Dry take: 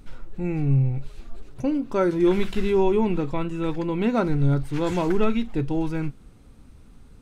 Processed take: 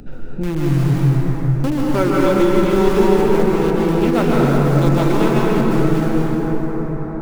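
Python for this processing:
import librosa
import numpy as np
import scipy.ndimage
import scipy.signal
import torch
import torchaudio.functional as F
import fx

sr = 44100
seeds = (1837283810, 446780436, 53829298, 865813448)

p1 = fx.wiener(x, sr, points=41)
p2 = fx.tilt_shelf(p1, sr, db=-3.5, hz=900.0)
p3 = (np.mod(10.0 ** (24.0 / 20.0) * p2 + 1.0, 2.0) - 1.0) / 10.0 ** (24.0 / 20.0)
p4 = p2 + (p3 * librosa.db_to_amplitude(-12.0))
p5 = fx.rev_plate(p4, sr, seeds[0], rt60_s=4.7, hf_ratio=0.35, predelay_ms=115, drr_db=-5.5)
p6 = fx.band_squash(p5, sr, depth_pct=40)
y = p6 * librosa.db_to_amplitude(4.0)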